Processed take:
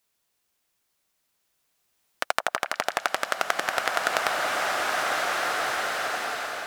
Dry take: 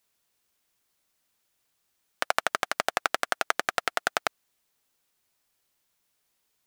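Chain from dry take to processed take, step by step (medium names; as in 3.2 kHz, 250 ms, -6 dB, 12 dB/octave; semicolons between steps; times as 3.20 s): repeats whose band climbs or falls 178 ms, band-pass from 760 Hz, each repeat 1.4 oct, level -5.5 dB; swelling reverb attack 2140 ms, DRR -2.5 dB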